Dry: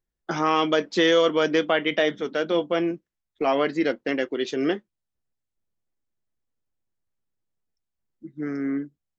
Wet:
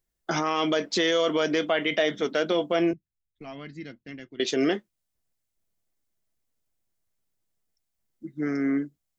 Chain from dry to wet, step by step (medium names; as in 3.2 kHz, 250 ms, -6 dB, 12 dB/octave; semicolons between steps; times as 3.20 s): 2.93–4.40 s: FFT filter 120 Hz 0 dB, 530 Hz -27 dB, 1.9 kHz -19 dB; peak limiter -17.5 dBFS, peak gain reduction 9 dB; treble shelf 4.2 kHz +8.5 dB; small resonant body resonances 660/2100 Hz, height 6 dB; trim +1.5 dB